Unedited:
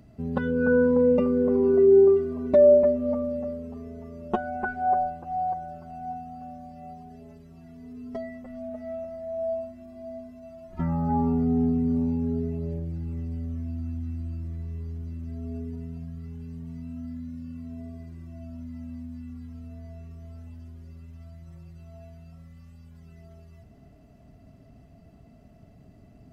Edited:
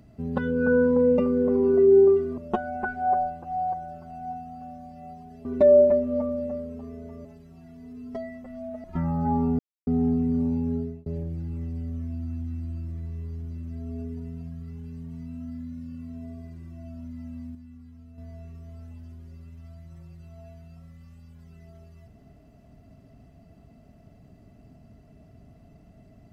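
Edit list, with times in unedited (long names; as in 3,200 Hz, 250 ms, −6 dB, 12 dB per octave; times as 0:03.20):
0:02.38–0:04.18: move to 0:07.25
0:08.84–0:10.68: remove
0:11.43: splice in silence 0.28 s
0:12.31–0:12.62: fade out
0:19.11–0:19.74: clip gain −7 dB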